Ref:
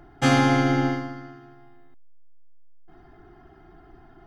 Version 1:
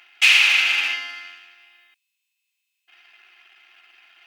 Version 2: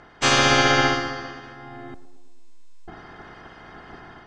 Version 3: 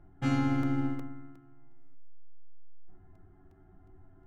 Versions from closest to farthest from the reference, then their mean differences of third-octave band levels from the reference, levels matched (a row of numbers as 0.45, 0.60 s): 3, 2, 1; 4.0, 7.0, 12.0 dB